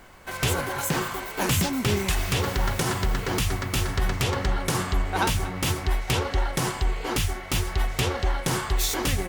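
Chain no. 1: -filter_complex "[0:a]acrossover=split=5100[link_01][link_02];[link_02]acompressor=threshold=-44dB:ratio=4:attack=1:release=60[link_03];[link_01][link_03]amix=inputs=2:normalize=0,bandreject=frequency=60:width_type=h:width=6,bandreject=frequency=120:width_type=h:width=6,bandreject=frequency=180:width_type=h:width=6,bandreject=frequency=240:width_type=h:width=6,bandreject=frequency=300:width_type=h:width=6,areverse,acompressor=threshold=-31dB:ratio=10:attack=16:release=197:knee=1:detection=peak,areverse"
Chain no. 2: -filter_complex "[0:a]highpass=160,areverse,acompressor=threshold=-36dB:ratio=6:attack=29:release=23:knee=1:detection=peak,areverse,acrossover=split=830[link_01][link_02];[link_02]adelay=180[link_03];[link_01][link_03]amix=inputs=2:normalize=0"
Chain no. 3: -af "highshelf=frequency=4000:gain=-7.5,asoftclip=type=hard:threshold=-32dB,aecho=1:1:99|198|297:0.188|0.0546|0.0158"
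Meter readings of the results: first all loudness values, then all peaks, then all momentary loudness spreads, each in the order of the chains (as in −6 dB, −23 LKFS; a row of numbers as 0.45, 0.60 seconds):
−35.0, −33.0, −34.5 LKFS; −21.5, −19.0, −30.0 dBFS; 2, 2, 2 LU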